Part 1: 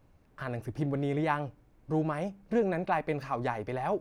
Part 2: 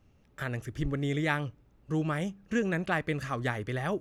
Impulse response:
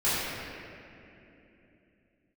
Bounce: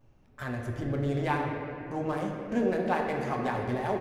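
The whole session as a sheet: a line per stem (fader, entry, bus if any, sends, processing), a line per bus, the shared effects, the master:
-4.0 dB, 0.00 s, send -11.5 dB, Wiener smoothing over 15 samples; high shelf 4700 Hz +6.5 dB
-5.0 dB, 6 ms, polarity flipped, send -14 dB, compressor, threshold -33 dBFS, peak gain reduction 10 dB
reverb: on, RT60 3.0 s, pre-delay 3 ms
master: dry

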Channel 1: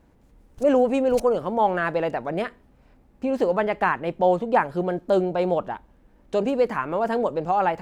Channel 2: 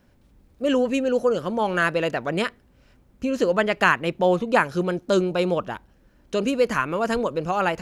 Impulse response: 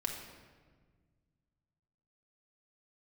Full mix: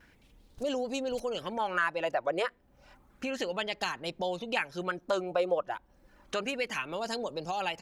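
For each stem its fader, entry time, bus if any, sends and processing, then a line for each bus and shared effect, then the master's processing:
-5.5 dB, 0.00 s, no send, dry
+3.0 dB, 4.1 ms, no send, reverb removal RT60 0.56 s; high shelf 7100 Hz -4 dB; LFO high-pass sine 0.31 Hz 530–4400 Hz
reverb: off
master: compressor 2:1, threshold -36 dBFS, peak gain reduction 14 dB

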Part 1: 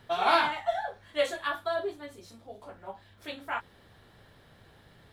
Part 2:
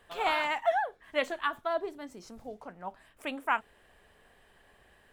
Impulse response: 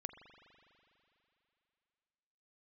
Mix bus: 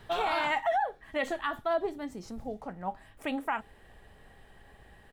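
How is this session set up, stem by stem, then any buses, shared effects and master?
+1.5 dB, 0.00 s, no send, auto duck -13 dB, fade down 0.90 s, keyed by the second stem
+0.5 dB, 3.8 ms, polarity flipped, no send, low shelf 300 Hz +11 dB; small resonant body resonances 810/1900 Hz, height 11 dB, ringing for 90 ms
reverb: off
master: limiter -20.5 dBFS, peak gain reduction 10 dB

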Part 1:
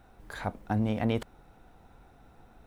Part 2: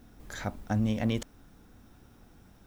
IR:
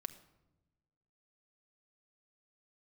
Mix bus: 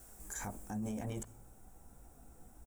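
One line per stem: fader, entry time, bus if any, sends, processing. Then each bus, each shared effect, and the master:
-8.0 dB, 0.00 s, send -10 dB, tilt shelf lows +6 dB, about 1200 Hz; chorus voices 6, 0.95 Hz, delay 17 ms, depth 3 ms
-3.0 dB, 0.8 ms, send -14.5 dB, HPF 590 Hz 12 dB/oct; resonant high shelf 5700 Hz +13.5 dB, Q 3; bit-crush 11-bit; auto duck -13 dB, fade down 1.45 s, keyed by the first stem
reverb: on, RT60 1.0 s, pre-delay 5 ms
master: limiter -31.5 dBFS, peak gain reduction 10.5 dB

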